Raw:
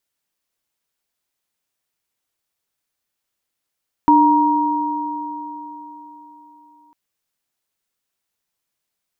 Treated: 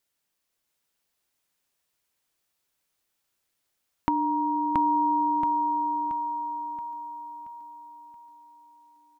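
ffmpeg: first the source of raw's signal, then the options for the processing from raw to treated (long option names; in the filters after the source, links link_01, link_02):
-f lavfi -i "aevalsrc='0.251*pow(10,-3*t/3.77)*sin(2*PI*298*t)+0.355*pow(10,-3*t/4.13)*sin(2*PI*944*t)':duration=2.85:sample_rate=44100"
-filter_complex "[0:a]acompressor=threshold=-24dB:ratio=6,asplit=2[link_01][link_02];[link_02]aecho=0:1:677|1354|2031|2708|3385|4062:0.668|0.294|0.129|0.0569|0.0251|0.011[link_03];[link_01][link_03]amix=inputs=2:normalize=0"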